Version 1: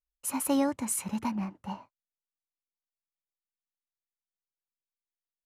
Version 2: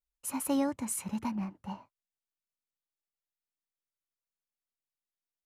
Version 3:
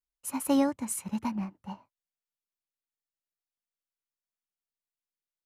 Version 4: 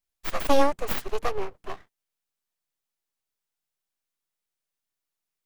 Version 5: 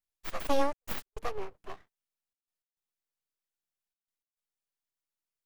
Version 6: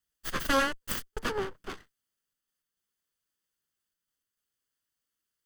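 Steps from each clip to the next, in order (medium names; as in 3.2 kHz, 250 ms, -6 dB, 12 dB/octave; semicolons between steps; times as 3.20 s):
bass shelf 210 Hz +4 dB; trim -4 dB
upward expansion 1.5:1, over -47 dBFS; trim +5 dB
full-wave rectifier; trim +8 dB
trance gate "xxxxx.x.xxx" 103 bpm -60 dB; trim -7.5 dB
comb filter that takes the minimum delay 0.63 ms; trim +8.5 dB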